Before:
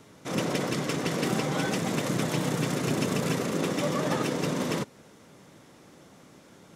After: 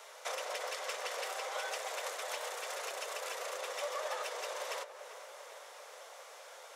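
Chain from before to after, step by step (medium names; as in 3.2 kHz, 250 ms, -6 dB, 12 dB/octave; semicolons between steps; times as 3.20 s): compression 4:1, threshold -39 dBFS, peak gain reduction 13.5 dB; steep high-pass 510 Hz 48 dB/octave; on a send: filtered feedback delay 393 ms, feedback 68%, low-pass 2.3 kHz, level -12 dB; on the sum: trim +5 dB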